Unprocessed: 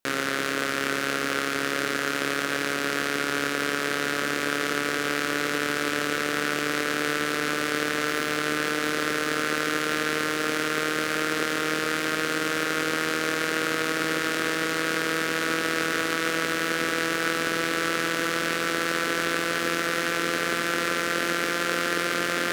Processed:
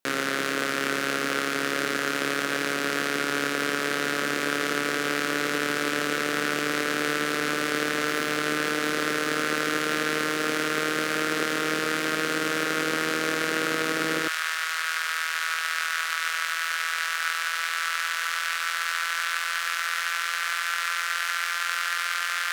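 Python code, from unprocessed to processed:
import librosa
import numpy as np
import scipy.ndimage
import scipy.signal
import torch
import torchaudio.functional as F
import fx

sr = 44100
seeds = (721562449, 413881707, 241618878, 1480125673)

y = fx.highpass(x, sr, hz=fx.steps((0.0, 120.0), (14.28, 980.0)), slope=24)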